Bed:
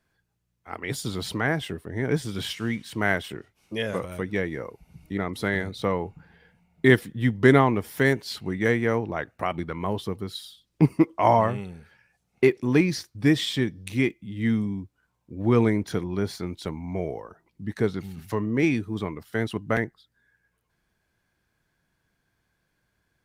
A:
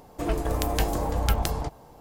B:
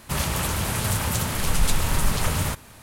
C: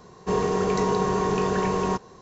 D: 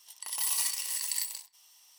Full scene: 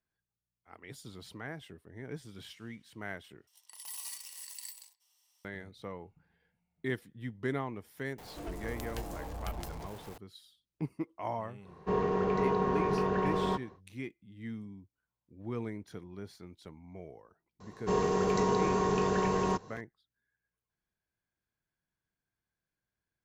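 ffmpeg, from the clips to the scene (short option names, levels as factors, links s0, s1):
-filter_complex "[3:a]asplit=2[s0][s1];[0:a]volume=0.133[s2];[1:a]aeval=exprs='val(0)+0.5*0.0398*sgn(val(0))':c=same[s3];[s0]lowpass=2600[s4];[s2]asplit=2[s5][s6];[s5]atrim=end=3.474[s7];[4:a]atrim=end=1.98,asetpts=PTS-STARTPTS,volume=0.224[s8];[s6]atrim=start=5.446[s9];[s3]atrim=end=2,asetpts=PTS-STARTPTS,volume=0.141,afade=t=in:d=0.004:c=hsin,afade=t=out:st=1.996:d=0.004:c=hsin,adelay=360738S[s10];[s4]atrim=end=2.21,asetpts=PTS-STARTPTS,volume=0.501,afade=t=in:d=0.1,afade=t=out:st=2.11:d=0.1,adelay=11600[s11];[s1]atrim=end=2.21,asetpts=PTS-STARTPTS,volume=0.562,afade=t=in:d=0.004:c=hsin,afade=t=out:st=2.206:d=0.004:c=hsin,adelay=17600[s12];[s7][s8]acrossfade=d=0.004:c1=hsin:c2=hsin[s13];[s13][s9]acrossfade=d=0.004:c1=hsin:c2=hsin[s14];[s14][s10][s11][s12]amix=inputs=4:normalize=0"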